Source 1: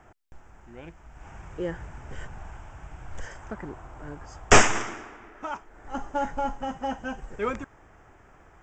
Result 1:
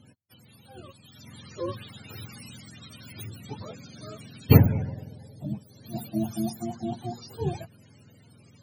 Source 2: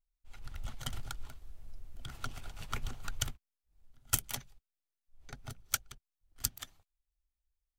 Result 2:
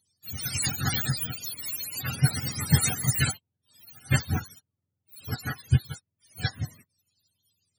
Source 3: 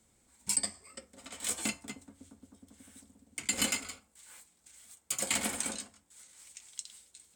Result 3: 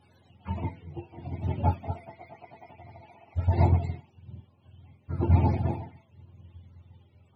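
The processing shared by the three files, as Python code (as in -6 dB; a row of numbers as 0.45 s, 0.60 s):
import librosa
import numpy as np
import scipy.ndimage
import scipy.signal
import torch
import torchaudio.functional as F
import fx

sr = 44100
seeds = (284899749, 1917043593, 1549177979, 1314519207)

y = fx.octave_mirror(x, sr, pivot_hz=430.0)
y = y * 10.0 ** (-30 / 20.0) / np.sqrt(np.mean(np.square(y)))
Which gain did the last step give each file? 0.0 dB, +17.5 dB, +13.5 dB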